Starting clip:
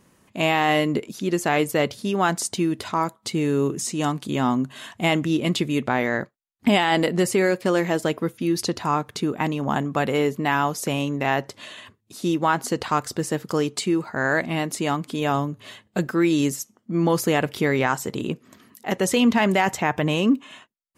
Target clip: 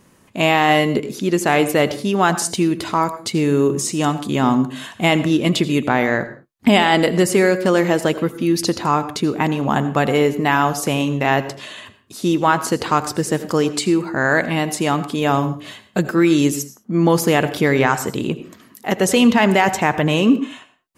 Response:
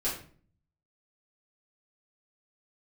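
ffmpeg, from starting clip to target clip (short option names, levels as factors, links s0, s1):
-filter_complex "[0:a]asplit=2[s0][s1];[1:a]atrim=start_sample=2205,afade=t=out:st=0.19:d=0.01,atrim=end_sample=8820,adelay=77[s2];[s1][s2]afir=irnorm=-1:irlink=0,volume=0.106[s3];[s0][s3]amix=inputs=2:normalize=0,volume=1.78"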